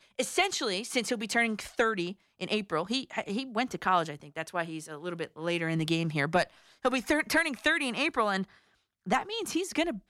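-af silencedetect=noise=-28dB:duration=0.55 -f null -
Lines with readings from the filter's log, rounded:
silence_start: 8.42
silence_end: 9.11 | silence_duration: 0.69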